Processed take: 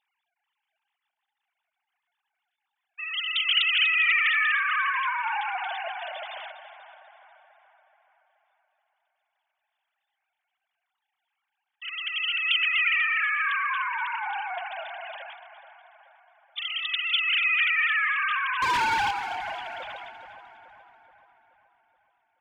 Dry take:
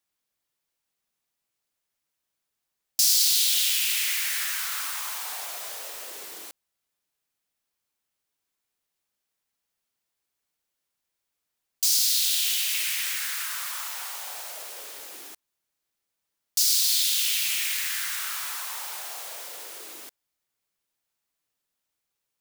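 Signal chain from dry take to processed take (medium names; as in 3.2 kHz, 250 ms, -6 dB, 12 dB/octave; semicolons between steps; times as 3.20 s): formants replaced by sine waves; 18.62–19.11 s: waveshaping leveller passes 3; on a send: two-band feedback delay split 2 kHz, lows 427 ms, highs 244 ms, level -12 dB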